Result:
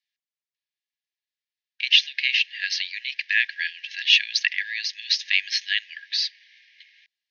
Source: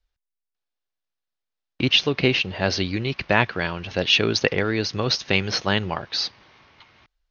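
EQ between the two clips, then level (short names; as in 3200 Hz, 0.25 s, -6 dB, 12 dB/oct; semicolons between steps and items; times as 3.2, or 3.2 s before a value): brick-wall FIR high-pass 1600 Hz; air absorption 160 m; high shelf 5600 Hz +11.5 dB; +2.5 dB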